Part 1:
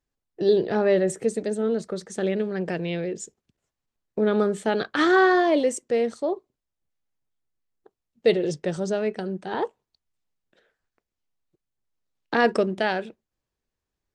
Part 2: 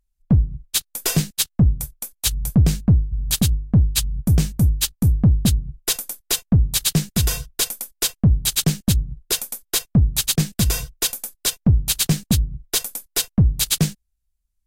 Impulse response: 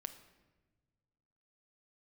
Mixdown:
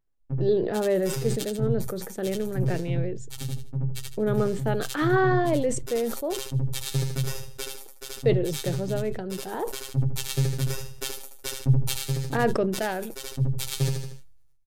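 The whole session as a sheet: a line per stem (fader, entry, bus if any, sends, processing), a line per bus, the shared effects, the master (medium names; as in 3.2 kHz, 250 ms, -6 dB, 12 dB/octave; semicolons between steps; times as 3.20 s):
-3.5 dB, 0.00 s, no send, no echo send, none
-1.0 dB, 0.00 s, no send, echo send -7 dB, flange 1.2 Hz, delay 8.5 ms, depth 4.3 ms, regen +27%; comb 2.2 ms, depth 55%; robot voice 134 Hz; auto duck -8 dB, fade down 0.40 s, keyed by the first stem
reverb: none
echo: feedback delay 77 ms, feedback 26%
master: treble shelf 2.6 kHz -9.5 dB; decay stretcher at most 54 dB/s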